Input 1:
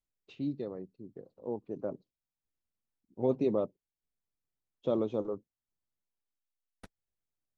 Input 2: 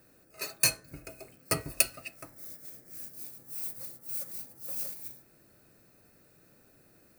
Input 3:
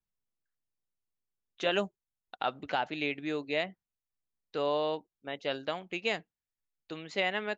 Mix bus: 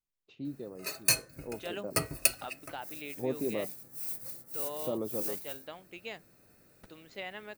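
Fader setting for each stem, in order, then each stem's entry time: -4.5 dB, -0.5 dB, -11.0 dB; 0.00 s, 0.45 s, 0.00 s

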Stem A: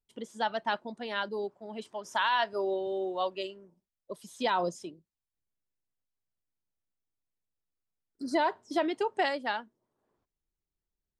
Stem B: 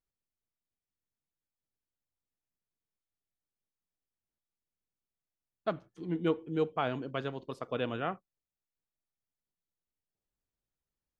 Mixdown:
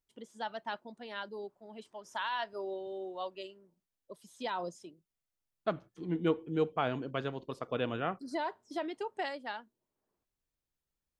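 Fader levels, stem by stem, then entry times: -8.0 dB, 0.0 dB; 0.00 s, 0.00 s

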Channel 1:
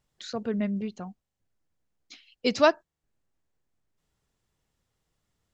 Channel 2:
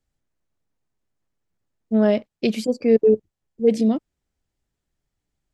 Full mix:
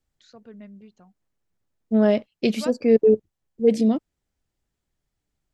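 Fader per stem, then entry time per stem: -15.0 dB, -0.5 dB; 0.00 s, 0.00 s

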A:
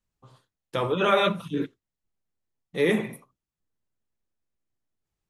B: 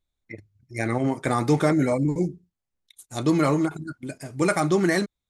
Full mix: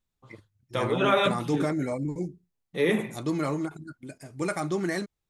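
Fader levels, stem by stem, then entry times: -1.5 dB, -7.5 dB; 0.00 s, 0.00 s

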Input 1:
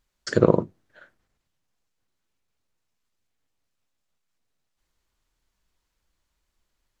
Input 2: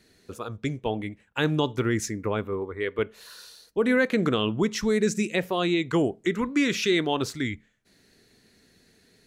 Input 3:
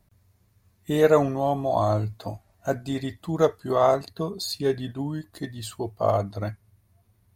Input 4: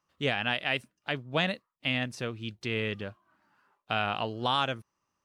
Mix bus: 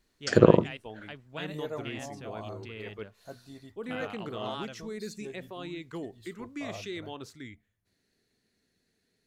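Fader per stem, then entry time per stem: 0.0 dB, -15.5 dB, -19.5 dB, -12.5 dB; 0.00 s, 0.00 s, 0.60 s, 0.00 s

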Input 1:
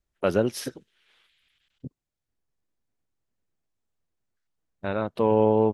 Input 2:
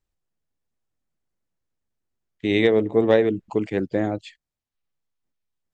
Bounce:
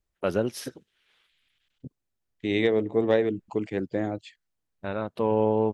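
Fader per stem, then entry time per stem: -3.0 dB, -5.0 dB; 0.00 s, 0.00 s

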